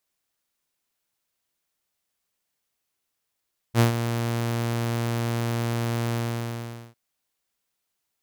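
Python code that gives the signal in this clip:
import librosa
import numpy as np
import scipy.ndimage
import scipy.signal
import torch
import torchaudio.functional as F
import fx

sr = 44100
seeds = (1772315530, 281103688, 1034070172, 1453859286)

y = fx.adsr_tone(sr, wave='saw', hz=117.0, attack_ms=58.0, decay_ms=121.0, sustain_db=-10.0, held_s=2.4, release_ms=804.0, level_db=-11.5)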